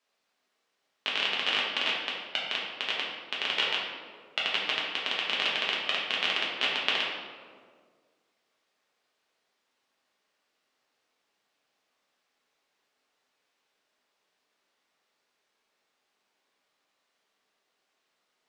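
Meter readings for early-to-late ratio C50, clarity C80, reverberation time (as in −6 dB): 1.0 dB, 3.5 dB, 1.8 s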